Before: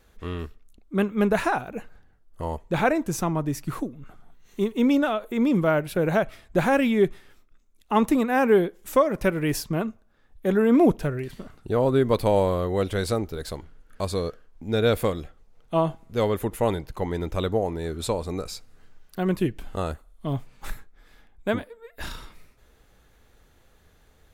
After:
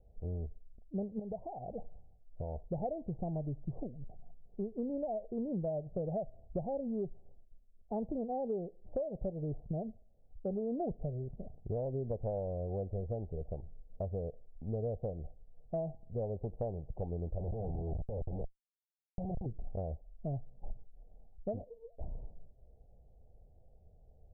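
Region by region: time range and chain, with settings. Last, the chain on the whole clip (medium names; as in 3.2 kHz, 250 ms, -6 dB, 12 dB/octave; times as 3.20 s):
1.19–2.65 s: peaking EQ 3.2 kHz +15 dB 2.4 oct + compression 20:1, threshold -27 dBFS
17.38–19.46 s: brick-wall FIR low-pass 3.2 kHz + Schmitt trigger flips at -30.5 dBFS
whole clip: steep low-pass 740 Hz 72 dB/octave; peaking EQ 300 Hz -13.5 dB 1.2 oct; compression 5:1, threshold -34 dBFS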